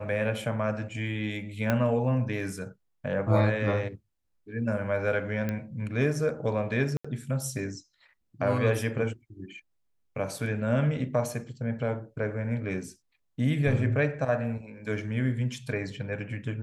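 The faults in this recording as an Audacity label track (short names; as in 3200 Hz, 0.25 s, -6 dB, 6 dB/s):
1.700000	1.700000	pop -12 dBFS
5.490000	5.490000	pop -18 dBFS
6.970000	7.040000	gap 75 ms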